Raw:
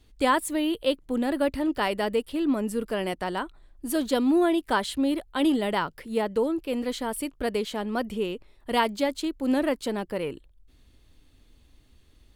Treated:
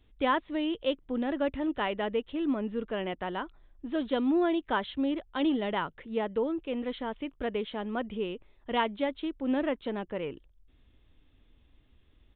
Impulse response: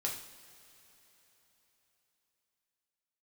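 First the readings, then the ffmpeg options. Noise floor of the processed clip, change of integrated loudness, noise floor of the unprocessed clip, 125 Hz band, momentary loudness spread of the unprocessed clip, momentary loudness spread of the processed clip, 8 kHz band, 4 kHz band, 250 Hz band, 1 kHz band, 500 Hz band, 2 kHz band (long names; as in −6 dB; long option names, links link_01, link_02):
−63 dBFS, −4.5 dB, −59 dBFS, −4.5 dB, 8 LU, 8 LU, below −40 dB, −5.5 dB, −4.5 dB, −4.5 dB, −4.5 dB, −4.5 dB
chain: -af "aresample=8000,aresample=44100,volume=-4.5dB"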